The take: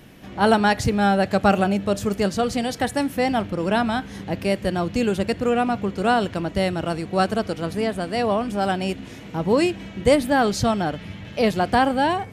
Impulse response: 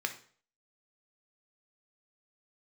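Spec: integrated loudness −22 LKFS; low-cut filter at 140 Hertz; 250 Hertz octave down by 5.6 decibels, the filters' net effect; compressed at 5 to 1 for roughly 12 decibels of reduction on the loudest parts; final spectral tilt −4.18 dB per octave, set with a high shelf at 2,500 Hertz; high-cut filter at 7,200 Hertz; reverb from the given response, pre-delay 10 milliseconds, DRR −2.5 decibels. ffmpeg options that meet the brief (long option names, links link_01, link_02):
-filter_complex "[0:a]highpass=140,lowpass=7200,equalizer=frequency=250:width_type=o:gain=-6.5,highshelf=frequency=2500:gain=4.5,acompressor=threshold=-27dB:ratio=5,asplit=2[link_01][link_02];[1:a]atrim=start_sample=2205,adelay=10[link_03];[link_02][link_03]afir=irnorm=-1:irlink=0,volume=-1.5dB[link_04];[link_01][link_04]amix=inputs=2:normalize=0,volume=6dB"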